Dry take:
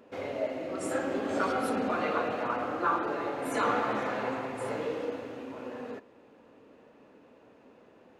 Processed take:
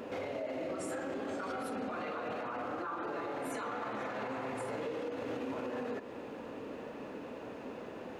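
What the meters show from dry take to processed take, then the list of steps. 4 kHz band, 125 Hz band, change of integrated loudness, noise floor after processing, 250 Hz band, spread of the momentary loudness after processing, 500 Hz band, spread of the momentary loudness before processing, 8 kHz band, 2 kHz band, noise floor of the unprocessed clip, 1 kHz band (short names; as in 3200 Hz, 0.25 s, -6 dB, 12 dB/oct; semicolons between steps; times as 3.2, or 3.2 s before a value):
-6.0 dB, -4.5 dB, -7.5 dB, -46 dBFS, -5.0 dB, 7 LU, -5.5 dB, 12 LU, -5.0 dB, -7.0 dB, -58 dBFS, -8.0 dB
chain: compressor, threshold -43 dBFS, peak gain reduction 18 dB; limiter -43 dBFS, peak gain reduction 11 dB; gain +12.5 dB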